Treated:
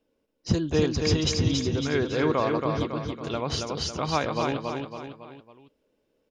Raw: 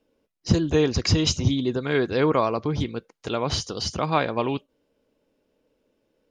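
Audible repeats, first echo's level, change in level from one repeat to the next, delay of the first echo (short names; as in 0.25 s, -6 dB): 4, -4.0 dB, -6.5 dB, 0.277 s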